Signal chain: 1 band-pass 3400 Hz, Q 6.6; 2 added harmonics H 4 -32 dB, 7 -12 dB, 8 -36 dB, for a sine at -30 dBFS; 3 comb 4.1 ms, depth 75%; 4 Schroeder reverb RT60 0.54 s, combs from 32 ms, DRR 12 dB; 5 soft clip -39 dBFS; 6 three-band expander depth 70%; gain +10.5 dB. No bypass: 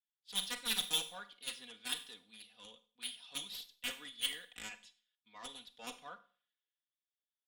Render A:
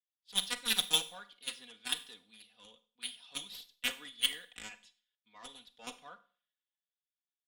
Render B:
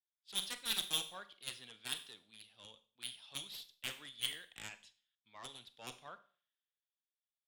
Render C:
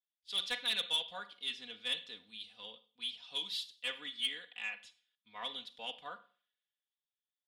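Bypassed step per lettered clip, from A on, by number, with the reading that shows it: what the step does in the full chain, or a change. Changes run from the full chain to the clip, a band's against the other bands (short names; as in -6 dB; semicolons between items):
5, distortion -10 dB; 3, 125 Hz band +5.5 dB; 2, crest factor change -6.0 dB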